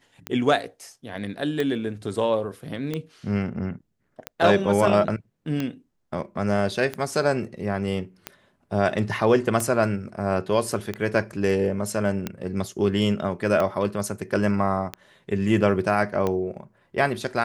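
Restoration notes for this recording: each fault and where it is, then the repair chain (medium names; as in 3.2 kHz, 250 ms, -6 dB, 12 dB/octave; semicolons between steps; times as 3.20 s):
tick 45 rpm -13 dBFS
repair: de-click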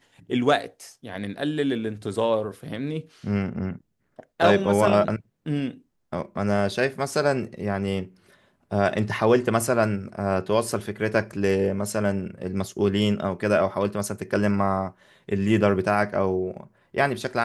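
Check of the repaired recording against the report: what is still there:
nothing left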